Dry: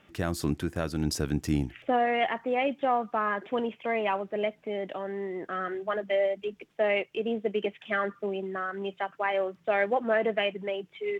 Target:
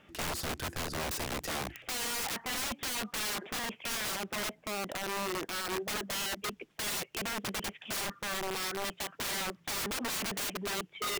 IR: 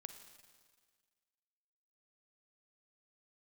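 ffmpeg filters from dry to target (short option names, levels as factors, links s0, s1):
-filter_complex "[0:a]asettb=1/sr,asplit=3[s0][s1][s2];[s0]atrim=end=4.334[s3];[s1]atrim=start=4.33:end=6.44,asetpts=PTS-STARTPTS,afade=t=in:d=0.004:c=qsin,afade=t=out:st=2.106:d=0.004:c=qsin,equalizer=f=2700:t=o:w=1.6:g=-4[s4];[s2]atrim=start=6.436[s5];[s3][s4]acrossfade=d=0.004:c1=hsin:c2=qsin[s6];[s6][s5]acrossfade=d=0.004:c1=qsin:c2=hsin,aeval=exprs='(mod(31.6*val(0)+1,2)-1)/31.6':c=same"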